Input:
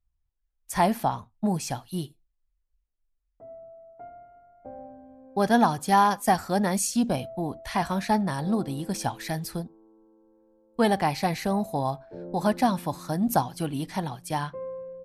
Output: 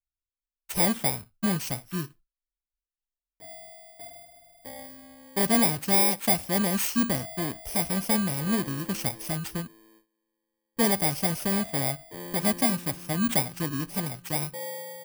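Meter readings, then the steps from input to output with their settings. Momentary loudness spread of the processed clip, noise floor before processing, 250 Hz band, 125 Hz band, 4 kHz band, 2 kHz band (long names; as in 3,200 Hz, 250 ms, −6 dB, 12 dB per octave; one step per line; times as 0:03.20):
21 LU, −76 dBFS, −1.5 dB, −0.5 dB, +4.5 dB, +0.5 dB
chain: samples in bit-reversed order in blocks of 32 samples
noise gate with hold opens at −51 dBFS
soft clipping −13.5 dBFS, distortion −19 dB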